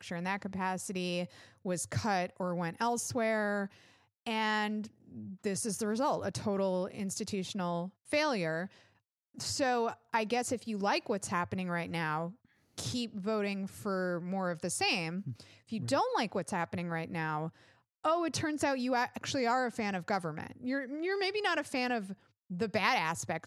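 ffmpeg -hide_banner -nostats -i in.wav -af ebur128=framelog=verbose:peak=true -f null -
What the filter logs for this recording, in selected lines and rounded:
Integrated loudness:
  I:         -34.0 LUFS
  Threshold: -44.3 LUFS
Loudness range:
  LRA:         1.8 LU
  Threshold: -54.4 LUFS
  LRA low:   -35.2 LUFS
  LRA high:  -33.4 LUFS
True peak:
  Peak:      -14.1 dBFS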